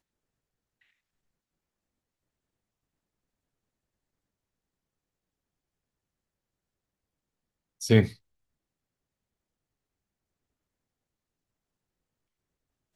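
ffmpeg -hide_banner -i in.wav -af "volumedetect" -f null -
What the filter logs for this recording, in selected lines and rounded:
mean_volume: -37.4 dB
max_volume: -7.7 dB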